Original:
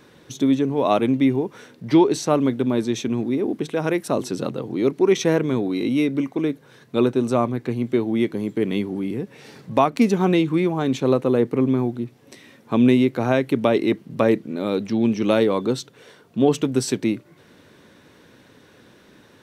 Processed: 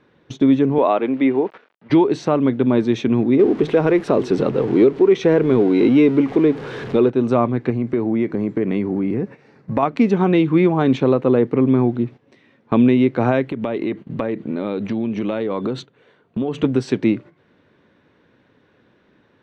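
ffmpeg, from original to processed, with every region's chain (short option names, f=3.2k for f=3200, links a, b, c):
-filter_complex "[0:a]asettb=1/sr,asplit=3[a][b][c];[a]atrim=end=0.784[d];[b]atrim=start=0.78:end=1.9,asetpts=PTS-STARTPTS,afade=t=in:d=0.004:c=qsin,afade=t=out:st=1.116:d=0.004:c=qsin,aeval=exprs='val(0)*gte(abs(val(0)),0.00891)':c=same,highpass=330,lowpass=3.3k[e];[c]atrim=start=1.896[f];[d][e]acrossfade=d=0.004:c1=hsin:c2=qsin[g];[g][f]acrossfade=d=0.004:c1=qsin:c2=hsin,asettb=1/sr,asplit=3[h][i][j];[h]atrim=end=3.394[k];[i]atrim=start=3.39:end=7.1,asetpts=PTS-STARTPTS,afade=t=in:d=0.004:c=qsin,afade=t=out:st=3.706:d=0.004:c=qsin,aeval=exprs='val(0)+0.5*0.0224*sgn(val(0))':c=same,equalizer=f=420:w=2.8:g=7[l];[j]atrim=start=7.096[m];[k][l]acrossfade=d=0.004:c1=hsin:c2=qsin[n];[n][m]acrossfade=d=0.004:c1=qsin:c2=hsin,asettb=1/sr,asplit=3[o][p][q];[o]atrim=end=7.704[r];[p]atrim=start=7.7:end=9.83,asetpts=PTS-STARTPTS,afade=t=in:d=0.004:c=qsin,afade=t=out:st=2.126:d=0.004:c=qsin,equalizer=f=3.3k:w=2.6:g=-10,acompressor=threshold=-23dB:ratio=3:attack=3.2:release=140:knee=1:detection=peak[s];[q]atrim=start=9.826[t];[r][s]acrossfade=d=0.004:c1=hsin:c2=qsin[u];[u][t]acrossfade=d=0.004:c1=qsin:c2=hsin,asettb=1/sr,asplit=3[v][w][x];[v]atrim=end=13.494[y];[w]atrim=start=13.49:end=16.64,asetpts=PTS-STARTPTS,afade=t=in:d=0.004:c=qsin,afade=t=out:st=3.146:d=0.004:c=qsin,bandreject=f=5.3k:w=5.5,acompressor=threshold=-25dB:ratio=8:attack=3.2:release=140:knee=1:detection=peak[z];[x]atrim=start=16.636[aa];[y][z]acrossfade=d=0.004:c1=hsin:c2=qsin[ab];[ab][aa]acrossfade=d=0.004:c1=qsin:c2=hsin,lowpass=2.8k,agate=range=-13dB:threshold=-39dB:ratio=16:detection=peak,alimiter=limit=-12.5dB:level=0:latency=1:release=395,volume=7dB"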